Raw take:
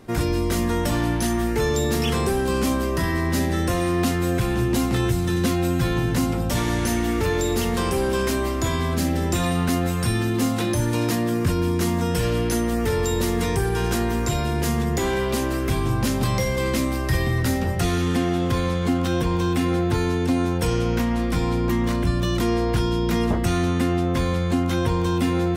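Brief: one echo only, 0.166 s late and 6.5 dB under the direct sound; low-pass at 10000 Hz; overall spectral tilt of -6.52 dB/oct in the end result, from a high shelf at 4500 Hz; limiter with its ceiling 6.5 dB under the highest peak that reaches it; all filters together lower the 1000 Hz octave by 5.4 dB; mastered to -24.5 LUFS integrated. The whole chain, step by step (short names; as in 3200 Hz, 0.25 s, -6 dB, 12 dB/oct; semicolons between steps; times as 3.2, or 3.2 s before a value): LPF 10000 Hz; bell 1000 Hz -7 dB; high shelf 4500 Hz -6 dB; limiter -17.5 dBFS; echo 0.166 s -6.5 dB; gain +0.5 dB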